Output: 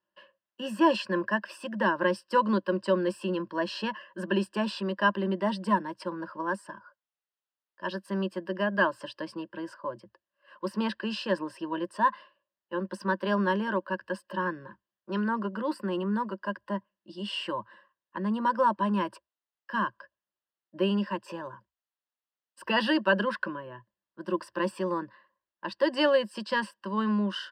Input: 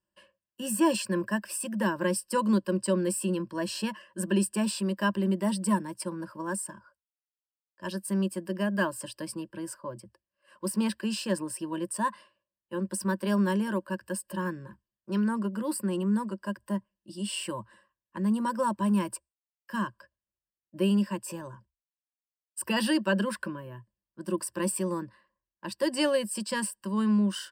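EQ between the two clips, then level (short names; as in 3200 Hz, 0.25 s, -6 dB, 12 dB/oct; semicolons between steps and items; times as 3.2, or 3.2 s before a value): HPF 750 Hz 6 dB/oct; air absorption 270 m; bell 2300 Hz -9.5 dB 0.22 oct; +8.5 dB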